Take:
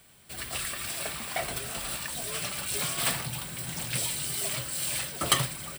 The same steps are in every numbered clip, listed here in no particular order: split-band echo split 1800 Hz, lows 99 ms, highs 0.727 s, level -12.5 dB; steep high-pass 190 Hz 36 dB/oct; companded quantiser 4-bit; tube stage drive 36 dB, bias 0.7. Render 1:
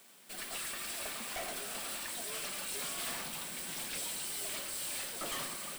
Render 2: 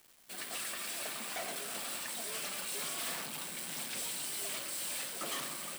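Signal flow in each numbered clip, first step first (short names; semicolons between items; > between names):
split-band echo > companded quantiser > steep high-pass > tube stage; split-band echo > tube stage > steep high-pass > companded quantiser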